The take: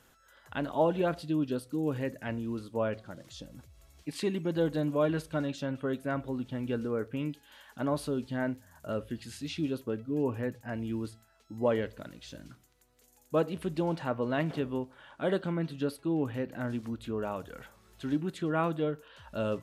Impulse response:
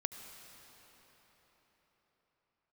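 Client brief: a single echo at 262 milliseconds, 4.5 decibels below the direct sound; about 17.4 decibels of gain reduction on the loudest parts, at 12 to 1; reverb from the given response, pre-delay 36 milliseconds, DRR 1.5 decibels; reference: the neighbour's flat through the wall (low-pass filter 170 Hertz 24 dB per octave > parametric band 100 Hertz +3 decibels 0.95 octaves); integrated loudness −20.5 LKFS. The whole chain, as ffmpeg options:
-filter_complex "[0:a]acompressor=threshold=-40dB:ratio=12,aecho=1:1:262:0.596,asplit=2[link_01][link_02];[1:a]atrim=start_sample=2205,adelay=36[link_03];[link_02][link_03]afir=irnorm=-1:irlink=0,volume=-1.5dB[link_04];[link_01][link_04]amix=inputs=2:normalize=0,lowpass=frequency=170:width=0.5412,lowpass=frequency=170:width=1.3066,equalizer=frequency=100:width_type=o:width=0.95:gain=3,volume=28dB"

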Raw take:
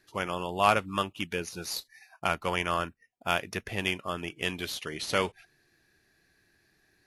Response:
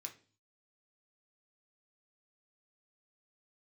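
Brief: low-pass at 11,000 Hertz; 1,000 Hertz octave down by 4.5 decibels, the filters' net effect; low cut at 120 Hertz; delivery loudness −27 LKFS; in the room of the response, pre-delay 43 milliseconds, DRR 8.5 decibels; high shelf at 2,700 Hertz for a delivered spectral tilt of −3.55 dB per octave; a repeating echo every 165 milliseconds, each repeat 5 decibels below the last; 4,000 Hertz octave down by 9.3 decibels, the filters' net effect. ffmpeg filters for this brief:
-filter_complex "[0:a]highpass=120,lowpass=11000,equalizer=frequency=1000:width_type=o:gain=-4.5,highshelf=frequency=2700:gain=-7.5,equalizer=frequency=4000:width_type=o:gain=-6.5,aecho=1:1:165|330|495|660|825|990|1155:0.562|0.315|0.176|0.0988|0.0553|0.031|0.0173,asplit=2[link_01][link_02];[1:a]atrim=start_sample=2205,adelay=43[link_03];[link_02][link_03]afir=irnorm=-1:irlink=0,volume=-4dB[link_04];[link_01][link_04]amix=inputs=2:normalize=0,volume=6dB"

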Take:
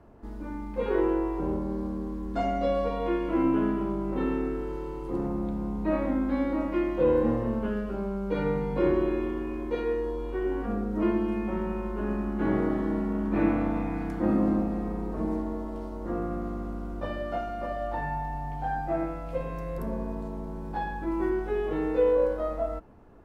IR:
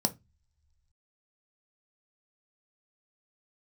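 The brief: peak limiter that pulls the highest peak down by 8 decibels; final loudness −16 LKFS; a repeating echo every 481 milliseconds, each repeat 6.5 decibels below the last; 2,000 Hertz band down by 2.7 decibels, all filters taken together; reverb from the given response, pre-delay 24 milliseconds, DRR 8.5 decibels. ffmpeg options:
-filter_complex "[0:a]equalizer=frequency=2000:width_type=o:gain=-3.5,alimiter=limit=-20dB:level=0:latency=1,aecho=1:1:481|962|1443|1924|2405|2886:0.473|0.222|0.105|0.0491|0.0231|0.0109,asplit=2[link_01][link_02];[1:a]atrim=start_sample=2205,adelay=24[link_03];[link_02][link_03]afir=irnorm=-1:irlink=0,volume=-14.5dB[link_04];[link_01][link_04]amix=inputs=2:normalize=0,volume=10.5dB"

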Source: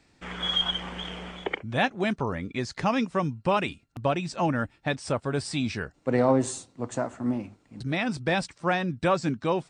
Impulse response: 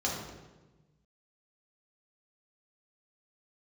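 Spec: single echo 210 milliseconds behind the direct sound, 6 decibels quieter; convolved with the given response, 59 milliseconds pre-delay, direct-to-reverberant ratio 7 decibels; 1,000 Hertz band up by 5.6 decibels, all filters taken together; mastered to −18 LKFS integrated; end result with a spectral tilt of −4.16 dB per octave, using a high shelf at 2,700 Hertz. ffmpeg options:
-filter_complex "[0:a]equalizer=frequency=1000:width_type=o:gain=6,highshelf=frequency=2700:gain=8,aecho=1:1:210:0.501,asplit=2[link_01][link_02];[1:a]atrim=start_sample=2205,adelay=59[link_03];[link_02][link_03]afir=irnorm=-1:irlink=0,volume=-14.5dB[link_04];[link_01][link_04]amix=inputs=2:normalize=0,volume=5dB"

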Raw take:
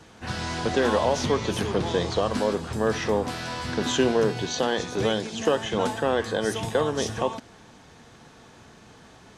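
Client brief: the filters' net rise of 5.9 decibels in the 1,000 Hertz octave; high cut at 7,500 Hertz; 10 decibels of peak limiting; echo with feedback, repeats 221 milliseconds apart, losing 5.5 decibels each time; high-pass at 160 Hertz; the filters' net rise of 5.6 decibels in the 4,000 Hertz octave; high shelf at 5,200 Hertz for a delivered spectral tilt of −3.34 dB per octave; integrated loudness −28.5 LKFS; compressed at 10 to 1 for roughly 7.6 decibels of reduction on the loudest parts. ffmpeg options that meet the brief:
ffmpeg -i in.wav -af "highpass=160,lowpass=7500,equalizer=frequency=1000:width_type=o:gain=7,equalizer=frequency=4000:width_type=o:gain=9,highshelf=frequency=5200:gain=-5,acompressor=threshold=-23dB:ratio=10,alimiter=limit=-21dB:level=0:latency=1,aecho=1:1:221|442|663|884|1105|1326|1547:0.531|0.281|0.149|0.079|0.0419|0.0222|0.0118,volume=1dB" out.wav

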